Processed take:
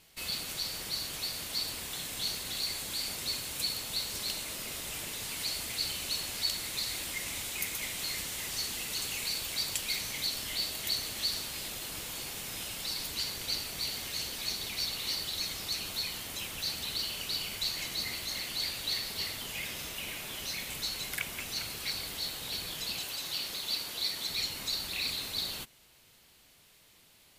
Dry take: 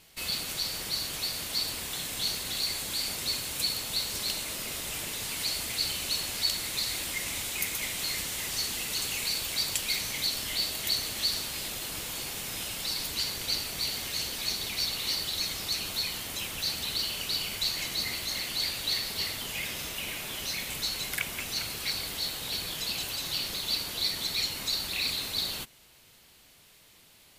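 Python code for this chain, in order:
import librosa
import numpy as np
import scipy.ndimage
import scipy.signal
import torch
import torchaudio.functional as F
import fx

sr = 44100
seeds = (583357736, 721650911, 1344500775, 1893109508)

y = fx.low_shelf(x, sr, hz=170.0, db=-9.5, at=(22.99, 24.29))
y = y * 10.0 ** (-3.5 / 20.0)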